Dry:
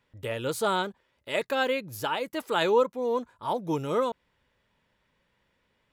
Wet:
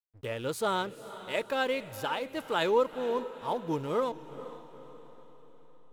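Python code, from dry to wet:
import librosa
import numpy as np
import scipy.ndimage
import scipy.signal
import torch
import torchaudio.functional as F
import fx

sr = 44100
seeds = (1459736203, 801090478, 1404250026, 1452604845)

y = fx.backlash(x, sr, play_db=-40.5)
y = fx.echo_diffused(y, sr, ms=463, feedback_pct=48, wet_db=-14)
y = y * librosa.db_to_amplitude(-3.0)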